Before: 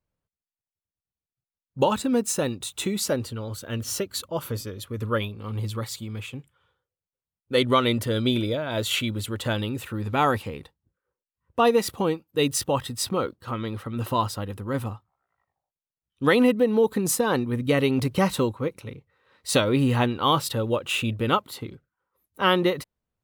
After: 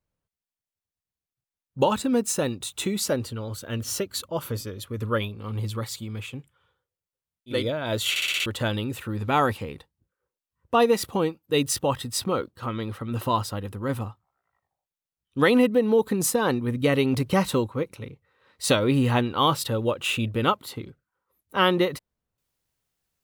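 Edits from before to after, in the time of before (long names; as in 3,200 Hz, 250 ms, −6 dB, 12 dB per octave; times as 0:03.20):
0:07.58–0:08.43: remove, crossfade 0.24 s
0:08.95: stutter in place 0.06 s, 6 plays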